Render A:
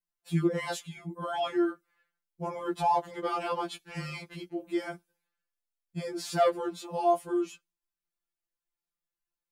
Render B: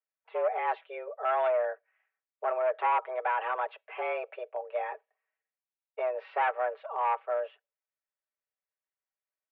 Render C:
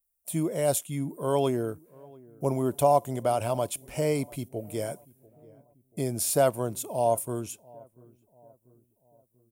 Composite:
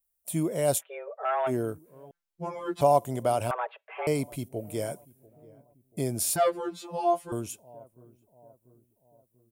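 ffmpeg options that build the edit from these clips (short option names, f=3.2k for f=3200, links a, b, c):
-filter_complex "[1:a]asplit=2[a][b];[0:a]asplit=2[c][d];[2:a]asplit=5[e][f][g][h][i];[e]atrim=end=0.83[j];[a]atrim=start=0.77:end=1.52[k];[f]atrim=start=1.46:end=2.112[l];[c]atrim=start=2.108:end=2.812[m];[g]atrim=start=2.808:end=3.512[n];[b]atrim=start=3.508:end=4.072[o];[h]atrim=start=4.068:end=6.362[p];[d]atrim=start=6.358:end=7.322[q];[i]atrim=start=7.318[r];[j][k]acrossfade=d=0.06:c1=tri:c2=tri[s];[s][l]acrossfade=d=0.06:c1=tri:c2=tri[t];[t][m]acrossfade=d=0.004:c1=hsin:c2=hsin[u];[u][n]acrossfade=d=0.004:c1=hsin:c2=hsin[v];[v][o]acrossfade=d=0.004:c1=hsin:c2=hsin[w];[w][p]acrossfade=d=0.004:c1=hsin:c2=hsin[x];[x][q]acrossfade=d=0.004:c1=hsin:c2=hsin[y];[y][r]acrossfade=d=0.004:c1=hsin:c2=hsin"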